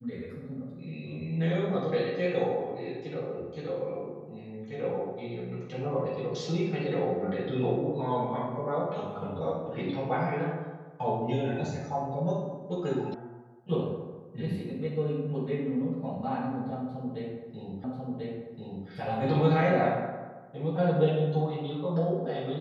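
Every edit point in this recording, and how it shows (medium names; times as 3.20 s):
13.14 s: sound stops dead
17.84 s: repeat of the last 1.04 s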